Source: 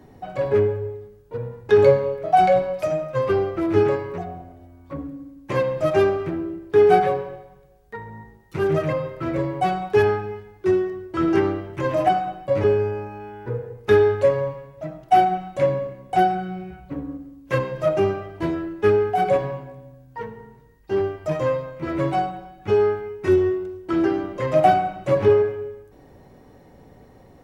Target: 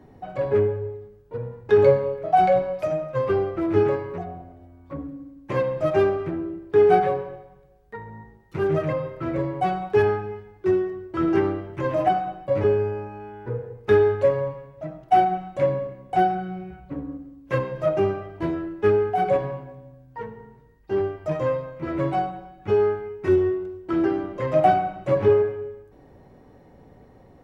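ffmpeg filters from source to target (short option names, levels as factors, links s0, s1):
-af "highshelf=f=3600:g=-8.5,volume=0.841"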